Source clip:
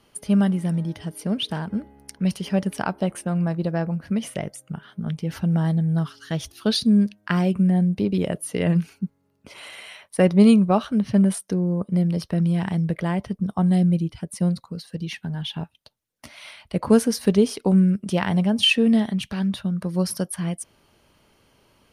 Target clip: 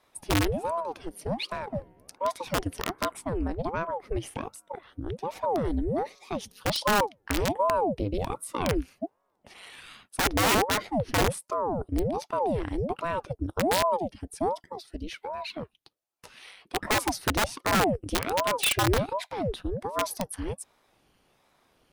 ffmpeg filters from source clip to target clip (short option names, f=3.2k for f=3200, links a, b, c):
-af "aeval=exprs='(mod(3.98*val(0)+1,2)-1)/3.98':c=same,aeval=exprs='val(0)*sin(2*PI*470*n/s+470*0.8/1.3*sin(2*PI*1.3*n/s))':c=same,volume=-3.5dB"